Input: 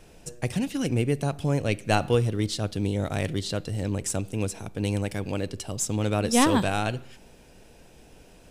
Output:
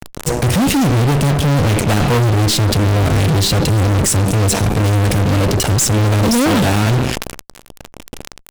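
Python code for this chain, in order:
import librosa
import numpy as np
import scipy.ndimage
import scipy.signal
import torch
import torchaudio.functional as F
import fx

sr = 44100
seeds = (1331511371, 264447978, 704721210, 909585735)

y = fx.low_shelf(x, sr, hz=400.0, db=7.5)
y = fx.fuzz(y, sr, gain_db=41.0, gate_db=-38.0)
y = fx.sustainer(y, sr, db_per_s=46.0)
y = y * librosa.db_to_amplitude(1.5)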